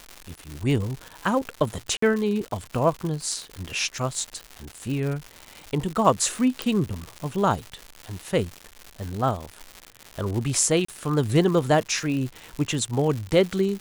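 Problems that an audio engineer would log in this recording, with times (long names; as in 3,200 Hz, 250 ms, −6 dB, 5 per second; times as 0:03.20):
surface crackle 210 per second −29 dBFS
0:01.97–0:02.02: drop-out 54 ms
0:06.62: click
0:10.85–0:10.88: drop-out 34 ms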